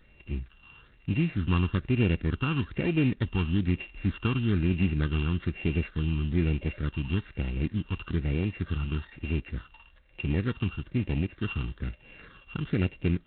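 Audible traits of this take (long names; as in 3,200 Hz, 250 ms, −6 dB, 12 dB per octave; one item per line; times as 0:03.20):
a buzz of ramps at a fixed pitch in blocks of 16 samples
phaser sweep stages 8, 1.1 Hz, lowest notch 590–1,200 Hz
G.726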